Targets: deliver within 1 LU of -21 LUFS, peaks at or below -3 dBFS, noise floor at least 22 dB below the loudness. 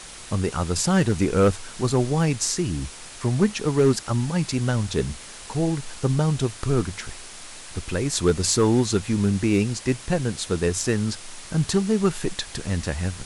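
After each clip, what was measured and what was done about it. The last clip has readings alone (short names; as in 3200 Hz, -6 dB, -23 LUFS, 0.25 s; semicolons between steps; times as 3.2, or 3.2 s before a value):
clipped 0.3%; flat tops at -11.0 dBFS; noise floor -41 dBFS; noise floor target -46 dBFS; loudness -23.5 LUFS; peak -11.0 dBFS; loudness target -21.0 LUFS
-> clip repair -11 dBFS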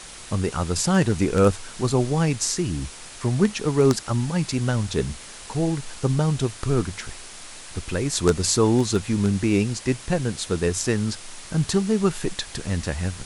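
clipped 0.0%; noise floor -41 dBFS; noise floor target -46 dBFS
-> denoiser 6 dB, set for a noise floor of -41 dBFS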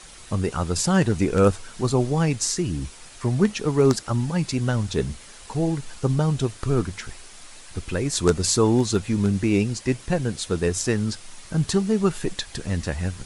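noise floor -44 dBFS; noise floor target -46 dBFS
-> denoiser 6 dB, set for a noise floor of -44 dBFS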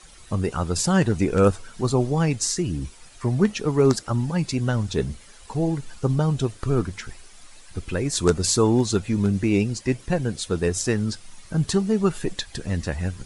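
noise floor -47 dBFS; loudness -23.5 LUFS; peak -2.0 dBFS; loudness target -21.0 LUFS
-> gain +2.5 dB; limiter -3 dBFS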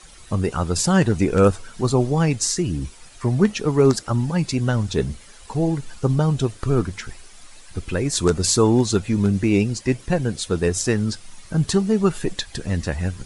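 loudness -21.0 LUFS; peak -3.0 dBFS; noise floor -45 dBFS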